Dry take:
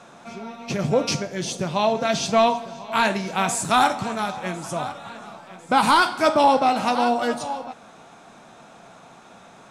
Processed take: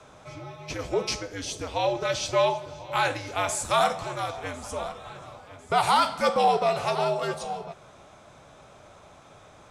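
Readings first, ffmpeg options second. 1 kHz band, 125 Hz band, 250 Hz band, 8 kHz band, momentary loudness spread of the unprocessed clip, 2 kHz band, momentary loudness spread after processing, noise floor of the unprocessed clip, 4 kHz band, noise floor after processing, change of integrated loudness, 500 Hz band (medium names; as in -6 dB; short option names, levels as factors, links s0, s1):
-5.0 dB, -5.5 dB, -11.5 dB, -4.0 dB, 19 LU, -6.0 dB, 19 LU, -48 dBFS, -4.0 dB, -52 dBFS, -5.0 dB, -3.5 dB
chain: -filter_complex "[0:a]acrossover=split=380|1700[s0][s1][s2];[s0]acompressor=threshold=0.0141:ratio=6[s3];[s3][s1][s2]amix=inputs=3:normalize=0,afreqshift=-86,volume=0.631"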